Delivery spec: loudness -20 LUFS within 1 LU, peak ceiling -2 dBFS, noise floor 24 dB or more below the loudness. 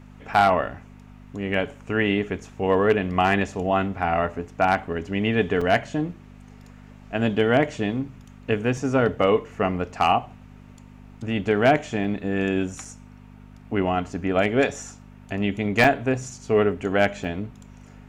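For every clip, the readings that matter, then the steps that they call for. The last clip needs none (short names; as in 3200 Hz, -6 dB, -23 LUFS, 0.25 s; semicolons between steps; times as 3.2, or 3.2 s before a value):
dropouts 6; longest dropout 4.4 ms; hum 50 Hz; harmonics up to 250 Hz; hum level -44 dBFS; loudness -23.5 LUFS; peak -7.5 dBFS; loudness target -20.0 LUFS
-> interpolate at 0.34/5.61/12.04/12.85/15.84/17.24, 4.4 ms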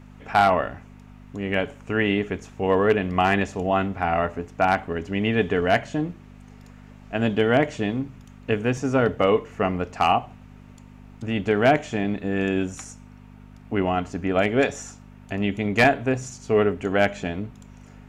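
dropouts 0; hum 50 Hz; harmonics up to 250 Hz; hum level -44 dBFS
-> de-hum 50 Hz, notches 5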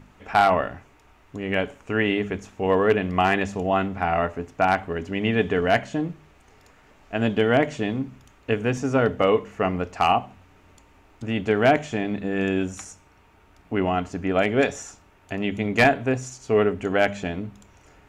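hum none; loudness -23.5 LUFS; peak -7.0 dBFS; loudness target -20.0 LUFS
-> gain +3.5 dB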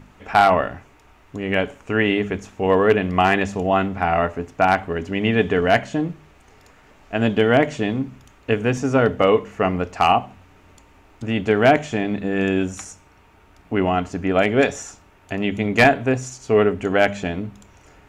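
loudness -20.0 LUFS; peak -3.5 dBFS; noise floor -52 dBFS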